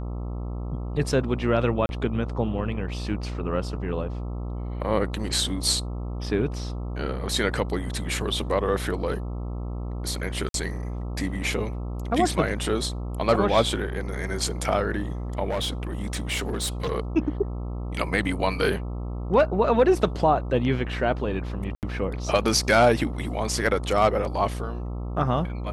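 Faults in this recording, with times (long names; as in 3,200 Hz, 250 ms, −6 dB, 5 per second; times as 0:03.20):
mains buzz 60 Hz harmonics 22 −31 dBFS
0:01.86–0:01.89: drop-out 31 ms
0:10.49–0:10.54: drop-out 52 ms
0:15.50–0:16.92: clipping −22.5 dBFS
0:21.75–0:21.83: drop-out 78 ms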